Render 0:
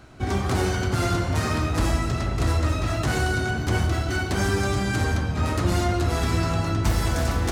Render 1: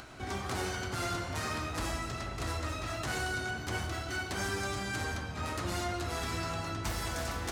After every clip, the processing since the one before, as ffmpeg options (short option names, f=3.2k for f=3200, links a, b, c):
-af "lowshelf=f=460:g=-9.5,acompressor=mode=upward:threshold=-33dB:ratio=2.5,volume=-6.5dB"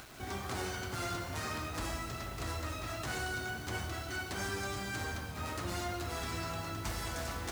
-af "acrusher=bits=7:mix=0:aa=0.000001,volume=-3dB"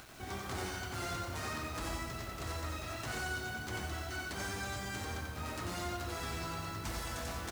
-af "aecho=1:1:90:0.596,volume=-2.5dB"